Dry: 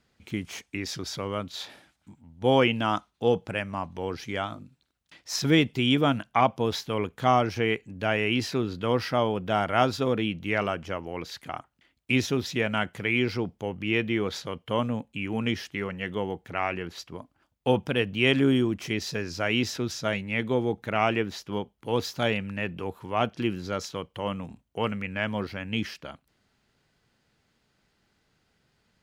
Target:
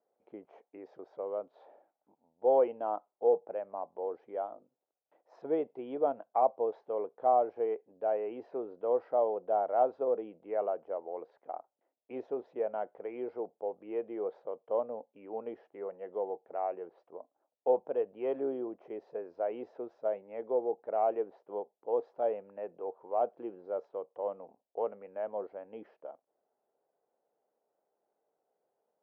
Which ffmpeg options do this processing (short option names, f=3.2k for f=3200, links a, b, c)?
-af "acontrast=29,asuperpass=centerf=590:order=4:qfactor=1.6,volume=-6dB"